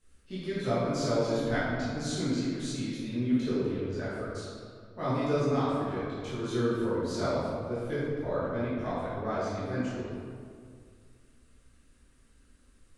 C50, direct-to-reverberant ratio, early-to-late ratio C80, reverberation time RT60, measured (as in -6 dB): -2.5 dB, -12.0 dB, -0.5 dB, 2.1 s